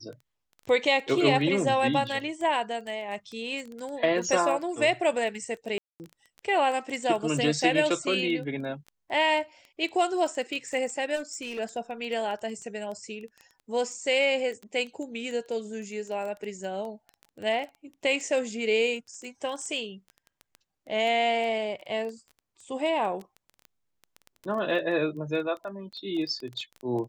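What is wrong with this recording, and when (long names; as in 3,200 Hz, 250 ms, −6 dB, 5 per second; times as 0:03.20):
surface crackle 12 per second −33 dBFS
0:05.78–0:06.00: drop-out 219 ms
0:11.15–0:11.60: clipping −30.5 dBFS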